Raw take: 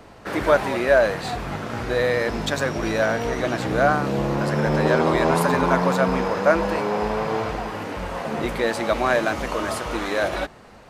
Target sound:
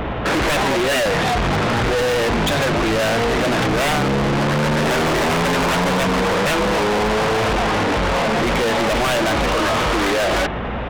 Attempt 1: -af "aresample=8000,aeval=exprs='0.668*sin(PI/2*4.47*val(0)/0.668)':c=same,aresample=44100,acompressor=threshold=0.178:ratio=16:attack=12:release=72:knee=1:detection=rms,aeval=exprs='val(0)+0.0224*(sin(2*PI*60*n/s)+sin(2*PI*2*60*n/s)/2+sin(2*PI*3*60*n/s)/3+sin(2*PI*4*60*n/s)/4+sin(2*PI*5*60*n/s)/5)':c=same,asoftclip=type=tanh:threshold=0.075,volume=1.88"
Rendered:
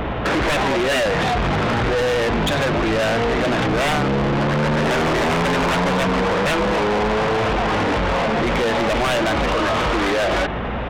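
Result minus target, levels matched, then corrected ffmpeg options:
compression: peak gain reduction +6 dB
-af "aresample=8000,aeval=exprs='0.668*sin(PI/2*4.47*val(0)/0.668)':c=same,aresample=44100,acompressor=threshold=0.376:ratio=16:attack=12:release=72:knee=1:detection=rms,aeval=exprs='val(0)+0.0224*(sin(2*PI*60*n/s)+sin(2*PI*2*60*n/s)/2+sin(2*PI*3*60*n/s)/3+sin(2*PI*4*60*n/s)/4+sin(2*PI*5*60*n/s)/5)':c=same,asoftclip=type=tanh:threshold=0.075,volume=1.88"

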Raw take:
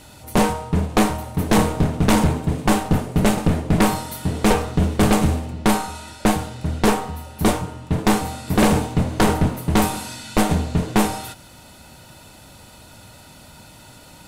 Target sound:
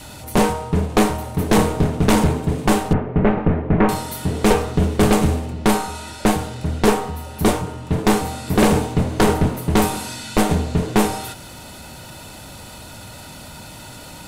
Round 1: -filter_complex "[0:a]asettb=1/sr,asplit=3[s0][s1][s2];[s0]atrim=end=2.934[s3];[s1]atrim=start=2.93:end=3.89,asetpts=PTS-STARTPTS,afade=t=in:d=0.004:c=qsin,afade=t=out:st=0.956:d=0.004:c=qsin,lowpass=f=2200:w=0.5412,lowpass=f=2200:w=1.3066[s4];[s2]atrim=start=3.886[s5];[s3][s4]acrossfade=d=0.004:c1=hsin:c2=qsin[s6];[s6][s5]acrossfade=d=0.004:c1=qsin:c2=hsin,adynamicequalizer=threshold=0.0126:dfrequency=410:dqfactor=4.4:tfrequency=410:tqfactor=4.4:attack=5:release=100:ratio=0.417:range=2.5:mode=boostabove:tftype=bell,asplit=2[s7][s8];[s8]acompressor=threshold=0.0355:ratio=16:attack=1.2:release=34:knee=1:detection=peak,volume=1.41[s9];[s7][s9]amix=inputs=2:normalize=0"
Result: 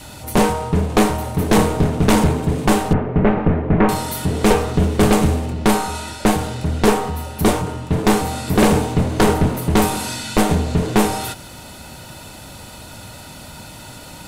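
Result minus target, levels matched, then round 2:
compression: peak gain reduction -11.5 dB
-filter_complex "[0:a]asettb=1/sr,asplit=3[s0][s1][s2];[s0]atrim=end=2.934[s3];[s1]atrim=start=2.93:end=3.89,asetpts=PTS-STARTPTS,afade=t=in:d=0.004:c=qsin,afade=t=out:st=0.956:d=0.004:c=qsin,lowpass=f=2200:w=0.5412,lowpass=f=2200:w=1.3066[s4];[s2]atrim=start=3.886[s5];[s3][s4]acrossfade=d=0.004:c1=hsin:c2=qsin[s6];[s6][s5]acrossfade=d=0.004:c1=qsin:c2=hsin,adynamicequalizer=threshold=0.0126:dfrequency=410:dqfactor=4.4:tfrequency=410:tqfactor=4.4:attack=5:release=100:ratio=0.417:range=2.5:mode=boostabove:tftype=bell,asplit=2[s7][s8];[s8]acompressor=threshold=0.00891:ratio=16:attack=1.2:release=34:knee=1:detection=peak,volume=1.41[s9];[s7][s9]amix=inputs=2:normalize=0"

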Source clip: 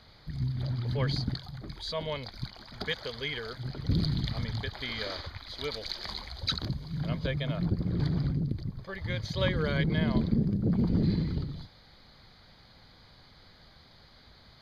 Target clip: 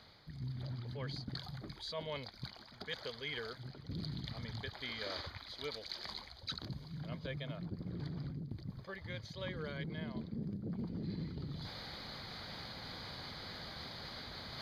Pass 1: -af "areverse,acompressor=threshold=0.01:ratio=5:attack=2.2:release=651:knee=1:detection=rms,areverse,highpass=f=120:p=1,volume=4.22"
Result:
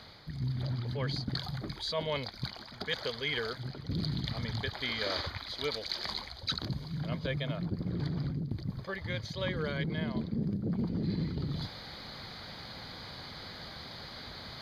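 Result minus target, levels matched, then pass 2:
compression: peak gain reduction -8.5 dB
-af "areverse,acompressor=threshold=0.00299:ratio=5:attack=2.2:release=651:knee=1:detection=rms,areverse,highpass=f=120:p=1,volume=4.22"

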